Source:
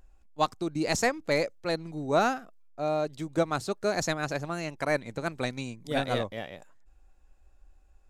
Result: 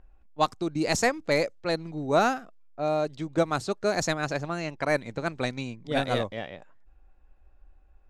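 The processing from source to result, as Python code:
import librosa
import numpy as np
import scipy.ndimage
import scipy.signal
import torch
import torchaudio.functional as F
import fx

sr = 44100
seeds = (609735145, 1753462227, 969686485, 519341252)

y = fx.env_lowpass(x, sr, base_hz=2400.0, full_db=-23.0)
y = y * 10.0 ** (2.0 / 20.0)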